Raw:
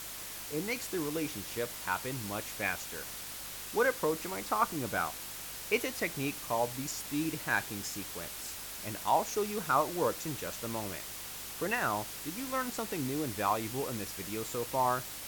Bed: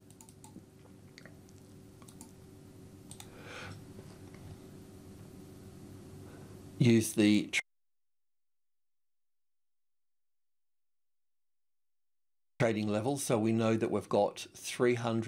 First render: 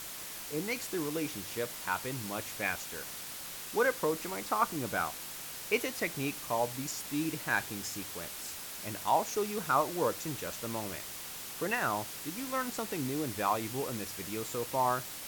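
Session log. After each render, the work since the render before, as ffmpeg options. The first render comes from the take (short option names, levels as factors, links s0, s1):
-af "bandreject=f=50:t=h:w=4,bandreject=f=100:t=h:w=4"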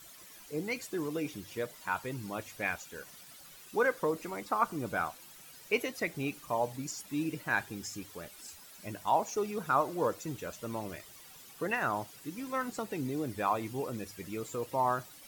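-af "afftdn=nr=13:nf=-43"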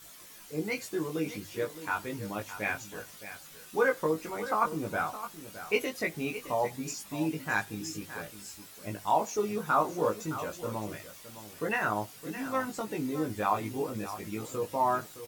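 -filter_complex "[0:a]asplit=2[s0][s1];[s1]adelay=19,volume=0.75[s2];[s0][s2]amix=inputs=2:normalize=0,aecho=1:1:615:0.237"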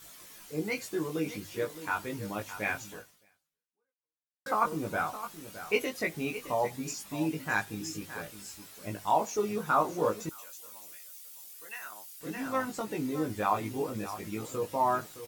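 -filter_complex "[0:a]asettb=1/sr,asplit=3[s0][s1][s2];[s0]atrim=end=10.294[s3];[s1]atrim=start=10.29:end=12.21,asetpts=PTS-STARTPTS,afade=t=in:d=0.004:c=qsin,afade=t=out:st=1.916:d=0.004:c=qsin,aderivative[s4];[s2]atrim=start=12.206[s5];[s3][s4]acrossfade=d=0.004:c1=hsin:c2=qsin[s6];[s6][s5]acrossfade=d=0.004:c1=qsin:c2=hsin,asplit=2[s7][s8];[s7]atrim=end=4.46,asetpts=PTS-STARTPTS,afade=t=out:st=2.91:d=1.55:c=exp[s9];[s8]atrim=start=4.46,asetpts=PTS-STARTPTS,afade=t=in:d=0.004:c=hsin[s10];[s9][s10]concat=n=2:v=0:a=1"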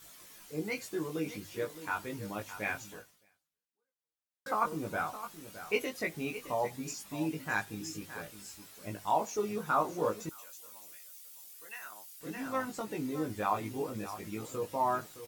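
-af "volume=0.708"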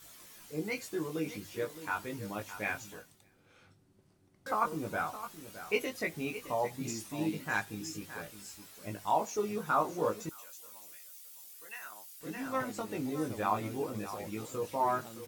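-filter_complex "[1:a]volume=0.141[s0];[0:a][s0]amix=inputs=2:normalize=0"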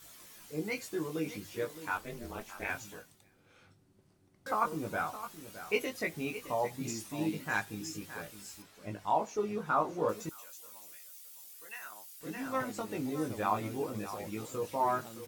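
-filter_complex "[0:a]asettb=1/sr,asplit=3[s0][s1][s2];[s0]atrim=end=1.974[s3];[s1]atrim=start=1.97:end=2.7,asetpts=PTS-STARTPTS,afade=t=in:d=0.004:c=qsin,afade=t=out:st=0.726:d=0.004:c=qsin,aeval=exprs='val(0)*sin(2*PI*120*n/s)':c=same[s4];[s2]atrim=start=2.696[s5];[s3][s4]acrossfade=d=0.004:c1=hsin:c2=qsin[s6];[s6][s5]acrossfade=d=0.004:c1=qsin:c2=hsin,asettb=1/sr,asplit=3[s7][s8][s9];[s7]atrim=end=8.624[s10];[s8]atrim=start=8.62:end=10.09,asetpts=PTS-STARTPTS,afade=t=in:d=0.004:c=qsin,afade=t=out:st=1.466:d=0.004:c=qsin,aemphasis=mode=reproduction:type=50kf[s11];[s9]atrim=start=10.086[s12];[s10][s11]acrossfade=d=0.004:c1=hsin:c2=qsin[s13];[s13][s12]acrossfade=d=0.004:c1=qsin:c2=hsin"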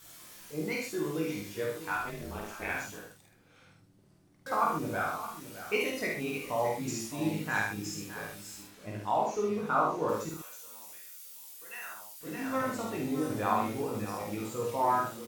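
-filter_complex "[0:a]asplit=2[s0][s1];[s1]adelay=49,volume=0.75[s2];[s0][s2]amix=inputs=2:normalize=0,aecho=1:1:76:0.531"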